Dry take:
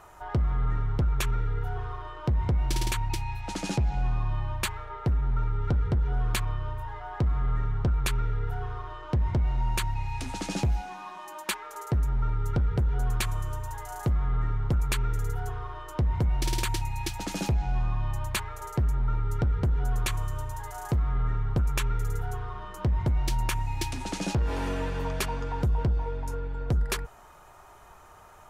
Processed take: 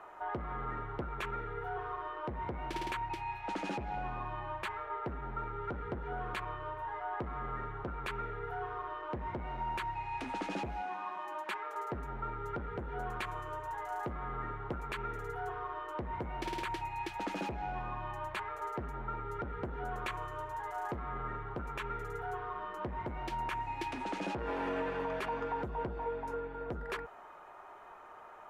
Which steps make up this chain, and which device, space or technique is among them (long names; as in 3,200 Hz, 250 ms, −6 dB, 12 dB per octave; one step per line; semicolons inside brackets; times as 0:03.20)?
DJ mixer with the lows and highs turned down (three-way crossover with the lows and the highs turned down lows −20 dB, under 240 Hz, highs −19 dB, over 2,800 Hz; brickwall limiter −28 dBFS, peak gain reduction 9 dB)
level +1 dB